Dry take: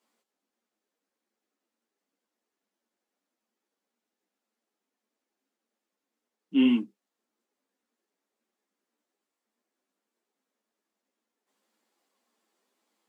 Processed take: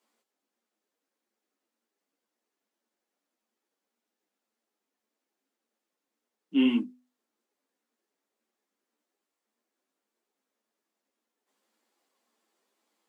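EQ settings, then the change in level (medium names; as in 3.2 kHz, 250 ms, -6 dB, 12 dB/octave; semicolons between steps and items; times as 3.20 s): high-pass 160 Hz; hum notches 50/100/150/200/250 Hz; 0.0 dB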